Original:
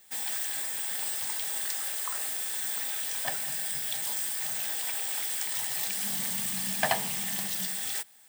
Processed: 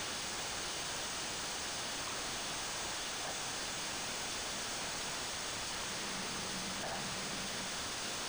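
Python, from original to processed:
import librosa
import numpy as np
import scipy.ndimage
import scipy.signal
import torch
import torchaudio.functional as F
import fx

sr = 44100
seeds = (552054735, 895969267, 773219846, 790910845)

y = np.sign(x) * np.sqrt(np.mean(np.square(x)))
y = scipy.signal.sosfilt(scipy.signal.ellip(3, 1.0, 40, [1600.0, 8900.0], 'bandstop', fs=sr, output='sos'), y)
y = np.interp(np.arange(len(y)), np.arange(len(y))[::3], y[::3])
y = y * librosa.db_to_amplitude(-4.5)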